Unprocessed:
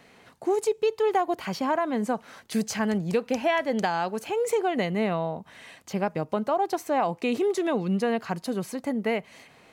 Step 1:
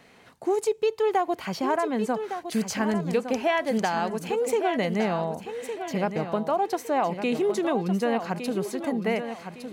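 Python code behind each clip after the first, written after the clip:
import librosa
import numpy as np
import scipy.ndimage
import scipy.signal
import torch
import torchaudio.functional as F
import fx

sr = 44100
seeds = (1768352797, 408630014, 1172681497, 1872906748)

y = fx.echo_feedback(x, sr, ms=1160, feedback_pct=33, wet_db=-9)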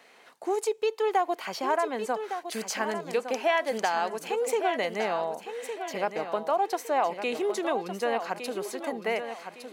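y = scipy.signal.sosfilt(scipy.signal.butter(2, 440.0, 'highpass', fs=sr, output='sos'), x)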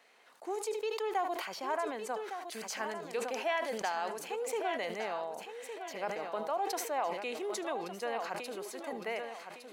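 y = fx.low_shelf(x, sr, hz=230.0, db=-8.5)
y = y + 10.0 ** (-19.5 / 20.0) * np.pad(y, (int(76 * sr / 1000.0), 0))[:len(y)]
y = fx.sustainer(y, sr, db_per_s=53.0)
y = y * librosa.db_to_amplitude(-7.5)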